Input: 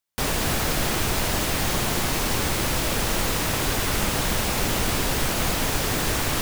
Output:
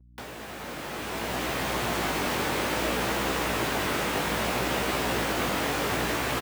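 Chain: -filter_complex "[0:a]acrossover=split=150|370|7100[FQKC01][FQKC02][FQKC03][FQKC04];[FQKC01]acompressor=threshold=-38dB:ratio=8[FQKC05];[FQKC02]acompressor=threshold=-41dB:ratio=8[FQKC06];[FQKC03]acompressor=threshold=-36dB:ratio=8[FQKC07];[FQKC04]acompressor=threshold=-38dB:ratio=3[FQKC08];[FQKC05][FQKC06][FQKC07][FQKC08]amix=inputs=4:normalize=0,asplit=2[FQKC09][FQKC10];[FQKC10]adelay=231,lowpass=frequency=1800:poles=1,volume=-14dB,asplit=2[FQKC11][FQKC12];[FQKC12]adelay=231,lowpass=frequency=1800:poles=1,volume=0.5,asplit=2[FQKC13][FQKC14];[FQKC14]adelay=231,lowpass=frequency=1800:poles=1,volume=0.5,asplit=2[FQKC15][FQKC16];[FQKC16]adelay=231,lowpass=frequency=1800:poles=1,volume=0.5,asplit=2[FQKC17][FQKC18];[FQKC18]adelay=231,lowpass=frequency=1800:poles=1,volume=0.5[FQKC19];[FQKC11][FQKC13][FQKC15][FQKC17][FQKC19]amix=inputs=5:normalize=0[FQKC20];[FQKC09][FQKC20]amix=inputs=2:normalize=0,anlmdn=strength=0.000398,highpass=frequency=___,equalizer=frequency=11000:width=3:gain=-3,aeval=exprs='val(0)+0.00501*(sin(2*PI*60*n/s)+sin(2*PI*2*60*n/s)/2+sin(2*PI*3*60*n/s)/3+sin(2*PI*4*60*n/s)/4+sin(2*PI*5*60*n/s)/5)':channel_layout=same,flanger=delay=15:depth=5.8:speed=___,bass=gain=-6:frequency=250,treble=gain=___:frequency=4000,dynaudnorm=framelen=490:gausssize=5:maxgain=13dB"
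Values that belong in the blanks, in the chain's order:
110, 0.62, -11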